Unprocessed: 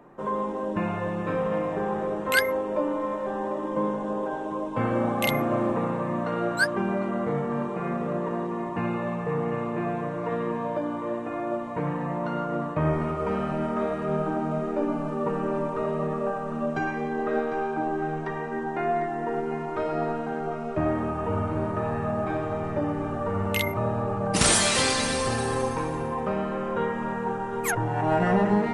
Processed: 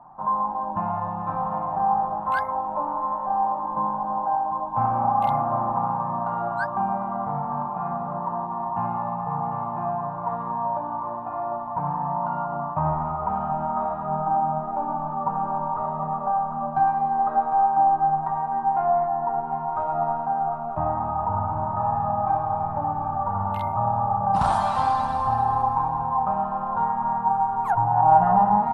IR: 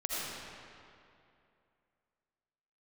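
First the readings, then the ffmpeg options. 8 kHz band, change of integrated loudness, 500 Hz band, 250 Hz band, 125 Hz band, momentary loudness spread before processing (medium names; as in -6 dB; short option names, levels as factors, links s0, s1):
under -25 dB, +3.0 dB, -4.5 dB, -6.5 dB, -1.5 dB, 6 LU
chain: -af "firequalizer=gain_entry='entry(130,0);entry(430,-20);entry(790,14);entry(2000,-19);entry(3800,-16);entry(6200,-26)':delay=0.05:min_phase=1"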